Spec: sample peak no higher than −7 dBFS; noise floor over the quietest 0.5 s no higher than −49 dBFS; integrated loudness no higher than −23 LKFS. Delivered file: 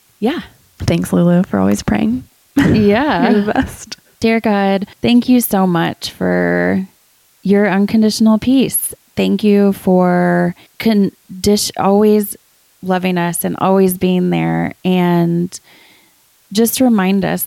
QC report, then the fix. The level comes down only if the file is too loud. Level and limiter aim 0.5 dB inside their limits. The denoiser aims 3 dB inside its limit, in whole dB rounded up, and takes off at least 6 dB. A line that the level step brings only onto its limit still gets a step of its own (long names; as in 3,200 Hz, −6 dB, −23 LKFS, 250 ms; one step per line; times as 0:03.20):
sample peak −2.0 dBFS: out of spec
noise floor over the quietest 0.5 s −53 dBFS: in spec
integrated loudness −14.0 LKFS: out of spec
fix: level −9.5 dB